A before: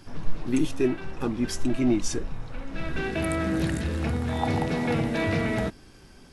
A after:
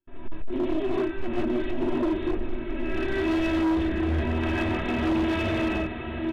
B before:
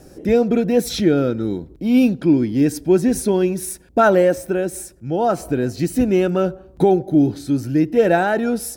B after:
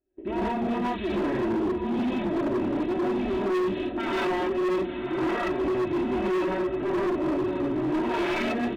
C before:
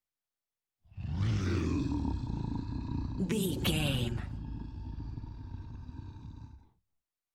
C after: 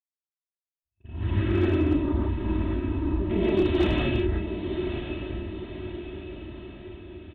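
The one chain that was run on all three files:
self-modulated delay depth 0.71 ms; gate -36 dBFS, range -33 dB; comb 3.1 ms, depth 74%; in parallel at -1 dB: compression 8:1, threshold -23 dBFS; on the sum: peak limiter -10 dBFS; resampled via 8 kHz; small resonant body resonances 370/1800/2600 Hz, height 11 dB, ringing for 60 ms; on a send: echo that smears into a reverb 1049 ms, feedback 52%, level -8 dB; on the sum: gated-style reverb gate 190 ms rising, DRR -7.5 dB; hard clipper -6 dBFS; normalise loudness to -27 LUFS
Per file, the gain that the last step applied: -15.0 dB, -17.0 dB, -9.5 dB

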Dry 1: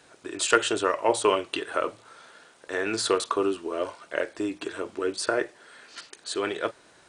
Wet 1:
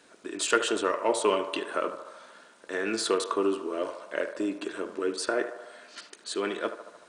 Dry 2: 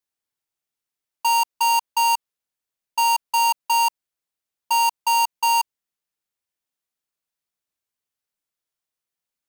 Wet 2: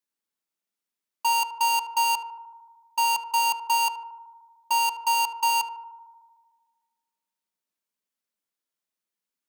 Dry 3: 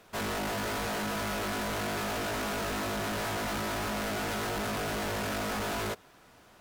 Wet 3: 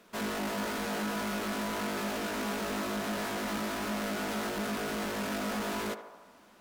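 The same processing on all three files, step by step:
resonant low shelf 160 Hz -6.5 dB, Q 3; band-stop 770 Hz, Q 12; in parallel at -8.5 dB: saturation -21 dBFS; on the sum: band-passed feedback delay 75 ms, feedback 73%, band-pass 840 Hz, level -9 dB; trim -5 dB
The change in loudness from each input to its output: -2.0 LU, -4.0 LU, -1.0 LU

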